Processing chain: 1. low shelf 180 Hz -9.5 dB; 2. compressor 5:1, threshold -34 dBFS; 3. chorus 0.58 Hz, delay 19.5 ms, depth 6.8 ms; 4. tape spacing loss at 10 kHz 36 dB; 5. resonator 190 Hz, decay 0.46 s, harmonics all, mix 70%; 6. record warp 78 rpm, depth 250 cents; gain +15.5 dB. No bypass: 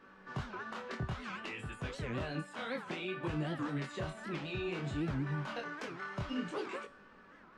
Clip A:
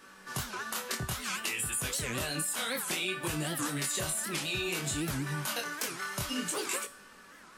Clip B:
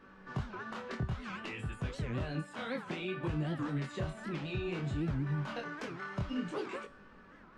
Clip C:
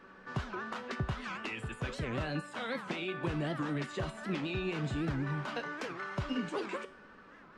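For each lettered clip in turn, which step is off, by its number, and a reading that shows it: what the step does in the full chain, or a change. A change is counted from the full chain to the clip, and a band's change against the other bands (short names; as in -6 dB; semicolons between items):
4, 8 kHz band +24.5 dB; 1, 125 Hz band +4.0 dB; 3, loudness change +2.5 LU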